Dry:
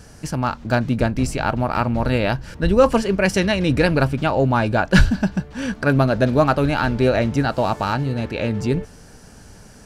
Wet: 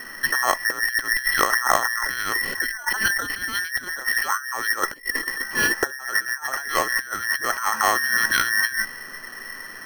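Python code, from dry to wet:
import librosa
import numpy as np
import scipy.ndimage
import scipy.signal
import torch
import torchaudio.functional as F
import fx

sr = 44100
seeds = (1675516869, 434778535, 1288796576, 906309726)

y = fx.band_invert(x, sr, width_hz=2000)
y = fx.peak_eq(y, sr, hz=640.0, db=-6.5, octaves=1.2)
y = fx.over_compress(y, sr, threshold_db=-25.0, ratio=-0.5)
y = scipy.signal.sosfilt(scipy.signal.cheby1(6, 6, 3300.0, 'lowpass', fs=sr, output='sos'), y)
y = np.repeat(y[::6], 6)[:len(y)]
y = fx.sustainer(y, sr, db_per_s=69.0, at=(2.02, 3.34))
y = y * 10.0 ** (7.0 / 20.0)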